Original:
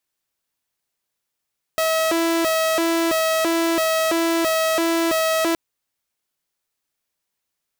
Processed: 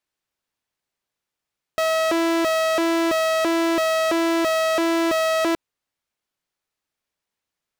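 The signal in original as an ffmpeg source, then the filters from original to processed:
-f lavfi -i "aevalsrc='0.178*(2*mod((487.5*t+155.5/1.5*(0.5-abs(mod(1.5*t,1)-0.5))),1)-1)':d=3.77:s=44100"
-af "lowpass=f=4k:p=1"

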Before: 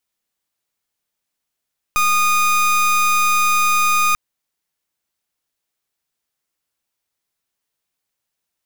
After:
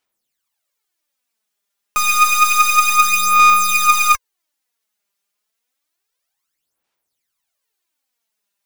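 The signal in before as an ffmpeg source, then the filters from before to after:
-f lavfi -i "aevalsrc='0.168*(2*lt(mod(1230*t,1),0.29)-1)':d=2.19:s=44100"
-af "lowshelf=f=220:g=-10.5,aphaser=in_gain=1:out_gain=1:delay=5:decay=0.68:speed=0.29:type=sinusoidal"

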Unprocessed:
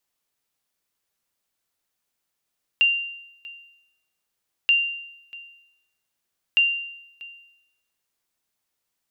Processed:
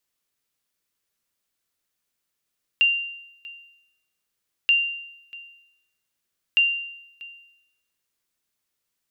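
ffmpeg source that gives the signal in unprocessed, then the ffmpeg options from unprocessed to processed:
-f lavfi -i "aevalsrc='0.251*(sin(2*PI*2780*mod(t,1.88))*exp(-6.91*mod(t,1.88)/0.83)+0.0841*sin(2*PI*2780*max(mod(t,1.88)-0.64,0))*exp(-6.91*max(mod(t,1.88)-0.64,0)/0.83))':d=5.64:s=44100"
-af "equalizer=f=790:w=1.9:g=-5"

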